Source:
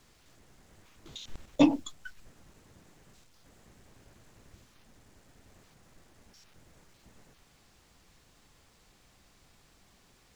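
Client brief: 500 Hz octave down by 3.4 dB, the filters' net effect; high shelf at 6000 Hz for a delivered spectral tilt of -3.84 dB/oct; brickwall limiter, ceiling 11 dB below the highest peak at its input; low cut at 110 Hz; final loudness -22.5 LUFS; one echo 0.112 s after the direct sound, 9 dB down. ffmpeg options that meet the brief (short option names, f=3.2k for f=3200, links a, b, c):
-af "highpass=110,equalizer=f=500:t=o:g=-4.5,highshelf=f=6k:g=5,alimiter=limit=-21dB:level=0:latency=1,aecho=1:1:112:0.355,volume=14.5dB"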